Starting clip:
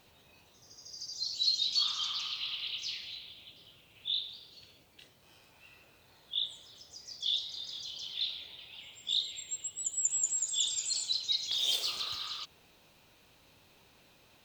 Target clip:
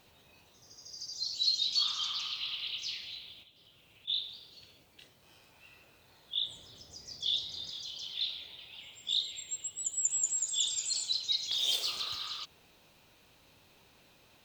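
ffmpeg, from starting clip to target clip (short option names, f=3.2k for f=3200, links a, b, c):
-filter_complex "[0:a]asplit=3[a][b][c];[a]afade=t=out:st=3.42:d=0.02[d];[b]acompressor=threshold=-57dB:ratio=12,afade=t=in:st=3.42:d=0.02,afade=t=out:st=4.07:d=0.02[e];[c]afade=t=in:st=4.07:d=0.02[f];[d][e][f]amix=inputs=3:normalize=0,asettb=1/sr,asplit=3[g][h][i];[g]atrim=end=6.474[j];[h]atrim=start=6.47:end=7.7,asetpts=PTS-STARTPTS,afade=t=in:d=0.004:c=qsin,afade=t=out:st=1.226:d=0.004:c=qsin,lowshelf=f=480:g=9[k];[i]atrim=start=7.696[l];[j][k]acrossfade=d=0.004:c1=hsin:c2=qsin[m];[m][l]acrossfade=d=0.004:c1=qsin:c2=hsin"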